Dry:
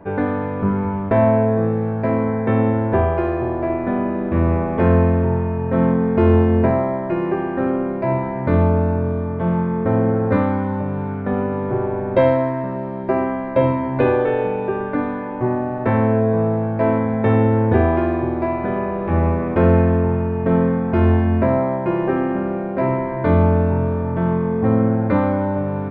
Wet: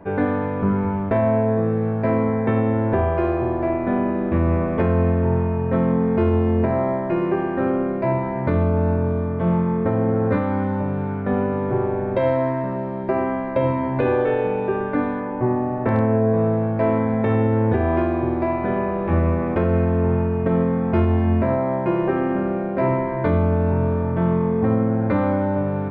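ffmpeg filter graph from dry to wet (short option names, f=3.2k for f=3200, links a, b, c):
-filter_complex "[0:a]asettb=1/sr,asplit=3[a][b][c];[a]atrim=end=15.204[d];[b]atrim=start=15.2:end=16.34,asetpts=PTS-STARTPTS,afade=t=in:d=0.004:c=qsin,afade=t=out:st=1.136:d=0.004:c=qsin,aemphasis=mode=reproduction:type=75fm,asoftclip=type=hard:threshold=-6.5dB[e];[c]atrim=start=16.336[f];[d][e]acrossfade=d=0.004:c1=hsin:c2=qsin[g];[g][f]acrossfade=d=0.004:c1=qsin:c2=hsin,bandreject=f=51.73:t=h:w=4,bandreject=f=103.46:t=h:w=4,bandreject=f=155.19:t=h:w=4,bandreject=f=206.92:t=h:w=4,bandreject=f=258.65:t=h:w=4,bandreject=f=310.38:t=h:w=4,bandreject=f=362.11:t=h:w=4,bandreject=f=413.84:t=h:w=4,bandreject=f=465.57:t=h:w=4,bandreject=f=517.3:t=h:w=4,bandreject=f=569.03:t=h:w=4,bandreject=f=620.76:t=h:w=4,bandreject=f=672.49:t=h:w=4,bandreject=f=724.22:t=h:w=4,bandreject=f=775.95:t=h:w=4,bandreject=f=827.68:t=h:w=4,bandreject=f=879.41:t=h:w=4,bandreject=f=931.14:t=h:w=4,bandreject=f=982.87:t=h:w=4,bandreject=f=1.0346k:t=h:w=4,bandreject=f=1.08633k:t=h:w=4,bandreject=f=1.13806k:t=h:w=4,bandreject=f=1.18979k:t=h:w=4,bandreject=f=1.24152k:t=h:w=4,bandreject=f=1.29325k:t=h:w=4,bandreject=f=1.34498k:t=h:w=4,bandreject=f=1.39671k:t=h:w=4,bandreject=f=1.44844k:t=h:w=4,bandreject=f=1.50017k:t=h:w=4,bandreject=f=1.5519k:t=h:w=4,bandreject=f=1.60363k:t=h:w=4,bandreject=f=1.65536k:t=h:w=4,bandreject=f=1.70709k:t=h:w=4,bandreject=f=1.75882k:t=h:w=4,bandreject=f=1.81055k:t=h:w=4,alimiter=limit=-10dB:level=0:latency=1:release=235"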